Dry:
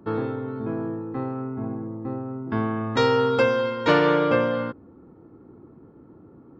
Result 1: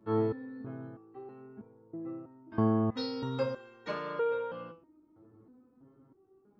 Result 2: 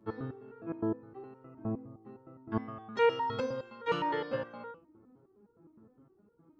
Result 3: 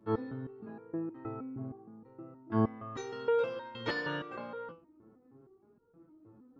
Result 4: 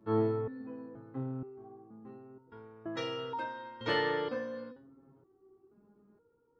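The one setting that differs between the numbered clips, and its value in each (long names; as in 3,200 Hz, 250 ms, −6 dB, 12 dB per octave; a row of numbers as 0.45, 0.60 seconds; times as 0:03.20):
step-sequenced resonator, speed: 3.1, 9.7, 6.4, 2.1 Hertz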